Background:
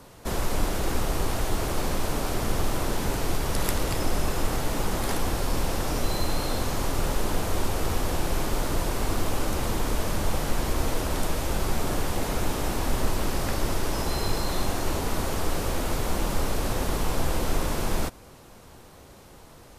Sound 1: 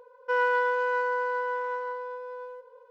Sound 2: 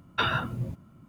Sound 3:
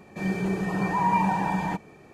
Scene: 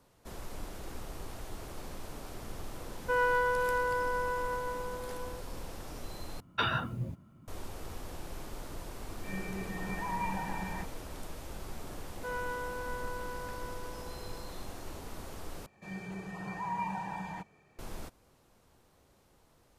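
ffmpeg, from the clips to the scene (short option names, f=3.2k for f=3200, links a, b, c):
-filter_complex "[1:a]asplit=2[a][b];[3:a]asplit=2[c][d];[0:a]volume=-16.5dB[e];[c]equalizer=f=2k:w=1.5:g=6.5[f];[d]equalizer=f=310:t=o:w=1.5:g=-7.5[g];[e]asplit=3[h][i][j];[h]atrim=end=6.404[k];[2:a]atrim=end=1.08,asetpts=PTS-STARTPTS,volume=-4dB[l];[i]atrim=start=7.476:end=15.664[m];[g]atrim=end=2.13,asetpts=PTS-STARTPTS,volume=-11dB[n];[j]atrim=start=17.786[o];[a]atrim=end=2.9,asetpts=PTS-STARTPTS,volume=-3.5dB,afade=t=in:d=0.004:c=hsin,afade=t=out:st=2.896:d=0.004:c=hsin,adelay=2800[p];[f]atrim=end=2.13,asetpts=PTS-STARTPTS,volume=-13.5dB,afade=t=in:d=0.004:c=hsin,afade=t=out:st=2.126:d=0.004:c=hsin,adelay=9080[q];[b]atrim=end=2.9,asetpts=PTS-STARTPTS,volume=-13dB,afade=t=in:d=0.004:c=hsin,afade=t=out:st=2.896:d=0.004:c=hsin,adelay=11950[r];[k][l]acrossfade=d=0.004:c1=hsin:c2=hsin[s];[s][m]acrossfade=d=0.004:c1=hsin:c2=hsin[t];[t][n]acrossfade=d=0.004:c1=hsin:c2=hsin[u];[u][o]acrossfade=d=0.004:c1=hsin:c2=hsin[v];[v][p][q][r]amix=inputs=4:normalize=0"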